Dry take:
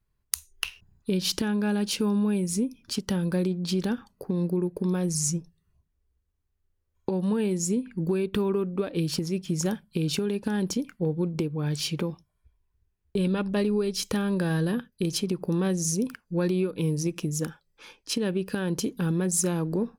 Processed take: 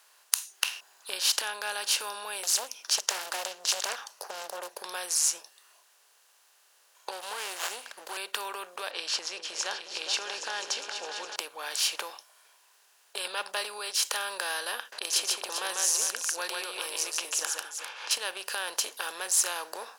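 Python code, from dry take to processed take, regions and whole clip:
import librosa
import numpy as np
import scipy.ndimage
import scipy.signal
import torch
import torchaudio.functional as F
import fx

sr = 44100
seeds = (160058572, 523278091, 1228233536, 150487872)

y = fx.chain(x, sr, fx.peak_eq(hz=5800.0, db=13.5, octaves=0.29),
    fx.doppler_dist(depth_ms=0.88), at=(2.43, 4.77))
y = fx.chain(y, sr, fx.low_shelf(hz=180.0, db=-11.5),
    fx.running_max(window=9), at=(7.11, 8.17))
y = fx.chain(y, sr, fx.lowpass(hz=6000.0, slope=24),
    fx.echo_opening(ms=205, hz=200, octaves=2, feedback_pct=70, wet_db=-6), at=(8.91, 11.36))
y = fx.chain(y, sr, fx.env_lowpass(base_hz=1800.0, full_db=-23.5),
    fx.echo_multitap(ms=(144, 398), db=(-4.5, -13.5)),
    fx.pre_swell(db_per_s=110.0), at=(14.92, 18.11))
y = fx.bin_compress(y, sr, power=0.6)
y = scipy.signal.sosfilt(scipy.signal.butter(4, 740.0, 'highpass', fs=sr, output='sos'), y)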